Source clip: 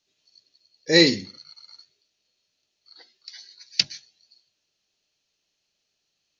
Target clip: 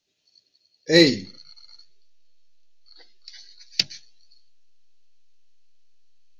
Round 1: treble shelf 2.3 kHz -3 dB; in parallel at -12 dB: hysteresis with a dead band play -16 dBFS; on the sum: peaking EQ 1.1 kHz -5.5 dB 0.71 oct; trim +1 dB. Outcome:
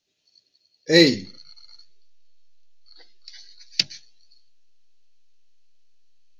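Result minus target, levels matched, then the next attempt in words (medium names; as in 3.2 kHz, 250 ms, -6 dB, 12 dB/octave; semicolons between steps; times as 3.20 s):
hysteresis with a dead band: distortion -4 dB
treble shelf 2.3 kHz -3 dB; in parallel at -12 dB: hysteresis with a dead band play -9 dBFS; on the sum: peaking EQ 1.1 kHz -5.5 dB 0.71 oct; trim +1 dB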